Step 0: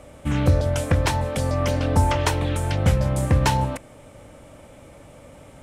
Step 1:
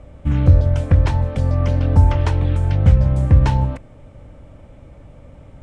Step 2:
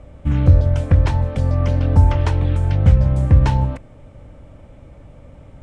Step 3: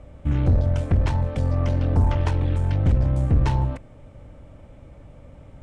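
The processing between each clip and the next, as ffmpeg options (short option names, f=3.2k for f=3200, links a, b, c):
-af "lowpass=10k,aemphasis=mode=reproduction:type=bsi,volume=-3.5dB"
-af anull
-af "aeval=exprs='(tanh(3.55*val(0)+0.35)-tanh(0.35))/3.55':c=same,volume=-2dB"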